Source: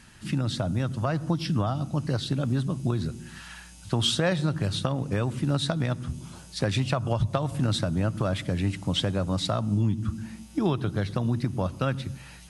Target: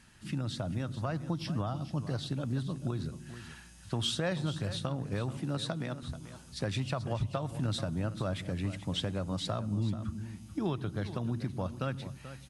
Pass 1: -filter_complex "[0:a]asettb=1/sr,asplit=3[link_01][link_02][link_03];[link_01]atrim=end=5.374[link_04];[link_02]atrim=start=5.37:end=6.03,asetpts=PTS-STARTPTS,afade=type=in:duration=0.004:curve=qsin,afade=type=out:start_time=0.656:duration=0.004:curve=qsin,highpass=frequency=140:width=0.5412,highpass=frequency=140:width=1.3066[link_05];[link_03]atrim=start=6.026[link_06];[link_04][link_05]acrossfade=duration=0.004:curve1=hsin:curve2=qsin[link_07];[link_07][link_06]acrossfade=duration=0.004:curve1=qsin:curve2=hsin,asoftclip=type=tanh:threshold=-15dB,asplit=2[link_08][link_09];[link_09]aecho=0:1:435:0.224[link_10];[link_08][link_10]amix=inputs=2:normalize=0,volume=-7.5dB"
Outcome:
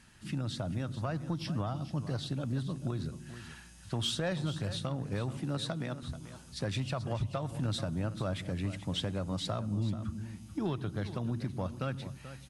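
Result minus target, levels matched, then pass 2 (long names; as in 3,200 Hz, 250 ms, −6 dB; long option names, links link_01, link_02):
soft clipping: distortion +14 dB
-filter_complex "[0:a]asettb=1/sr,asplit=3[link_01][link_02][link_03];[link_01]atrim=end=5.374[link_04];[link_02]atrim=start=5.37:end=6.03,asetpts=PTS-STARTPTS,afade=type=in:duration=0.004:curve=qsin,afade=type=out:start_time=0.656:duration=0.004:curve=qsin,highpass=frequency=140:width=0.5412,highpass=frequency=140:width=1.3066[link_05];[link_03]atrim=start=6.026[link_06];[link_04][link_05]acrossfade=duration=0.004:curve1=hsin:curve2=qsin[link_07];[link_07][link_06]acrossfade=duration=0.004:curve1=qsin:curve2=hsin,asoftclip=type=tanh:threshold=-6.5dB,asplit=2[link_08][link_09];[link_09]aecho=0:1:435:0.224[link_10];[link_08][link_10]amix=inputs=2:normalize=0,volume=-7.5dB"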